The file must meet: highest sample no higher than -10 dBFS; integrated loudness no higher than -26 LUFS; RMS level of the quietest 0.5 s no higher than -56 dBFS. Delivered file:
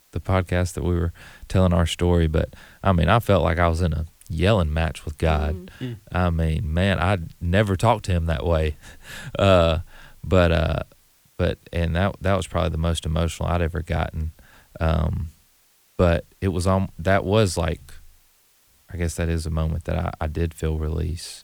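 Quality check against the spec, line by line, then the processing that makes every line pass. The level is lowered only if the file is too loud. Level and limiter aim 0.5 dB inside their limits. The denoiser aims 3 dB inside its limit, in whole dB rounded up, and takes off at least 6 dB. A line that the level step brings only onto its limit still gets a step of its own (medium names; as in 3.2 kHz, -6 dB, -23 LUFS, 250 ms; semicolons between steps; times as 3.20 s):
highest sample -3.5 dBFS: fail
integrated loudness -23.0 LUFS: fail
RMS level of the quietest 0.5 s -60 dBFS: pass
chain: trim -3.5 dB; peak limiter -10.5 dBFS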